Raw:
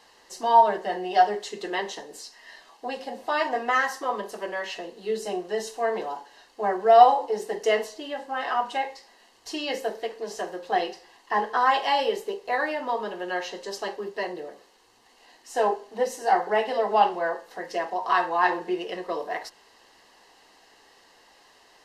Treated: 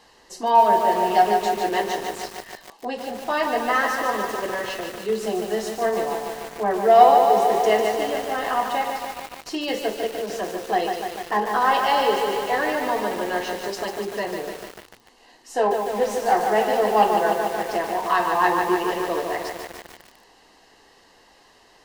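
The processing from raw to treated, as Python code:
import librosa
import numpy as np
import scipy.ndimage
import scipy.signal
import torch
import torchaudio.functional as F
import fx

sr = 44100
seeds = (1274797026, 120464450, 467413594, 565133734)

p1 = fx.low_shelf(x, sr, hz=290.0, db=8.5)
p2 = 10.0 ** (-18.0 / 20.0) * np.tanh(p1 / 10.0 ** (-18.0 / 20.0))
p3 = p1 + (p2 * 10.0 ** (-10.5 / 20.0))
p4 = fx.echo_crushed(p3, sr, ms=148, feedback_pct=80, bits=6, wet_db=-4.5)
y = p4 * 10.0 ** (-1.0 / 20.0)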